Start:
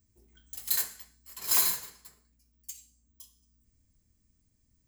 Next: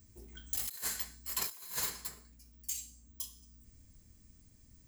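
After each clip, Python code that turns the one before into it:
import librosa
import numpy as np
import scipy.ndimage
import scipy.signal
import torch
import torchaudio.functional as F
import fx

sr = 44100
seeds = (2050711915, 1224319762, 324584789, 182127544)

y = fx.over_compress(x, sr, threshold_db=-42.0, ratio=-1.0)
y = F.gain(torch.from_numpy(y), 1.5).numpy()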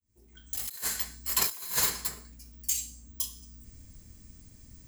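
y = fx.fade_in_head(x, sr, length_s=1.42)
y = F.gain(torch.from_numpy(y), 9.0).numpy()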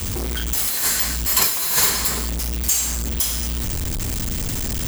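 y = x + 0.5 * 10.0 ** (-24.5 / 20.0) * np.sign(x)
y = F.gain(torch.from_numpy(y), 6.0).numpy()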